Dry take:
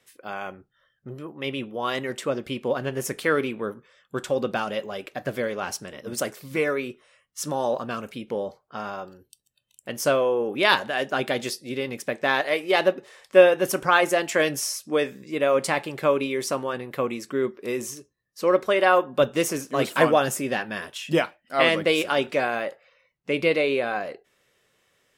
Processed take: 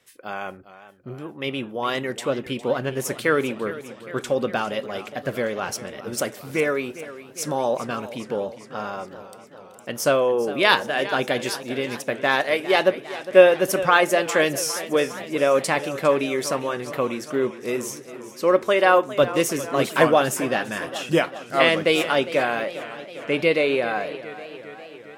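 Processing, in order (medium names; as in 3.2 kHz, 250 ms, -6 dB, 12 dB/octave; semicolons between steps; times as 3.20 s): modulated delay 405 ms, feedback 67%, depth 92 cents, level -15 dB; trim +2 dB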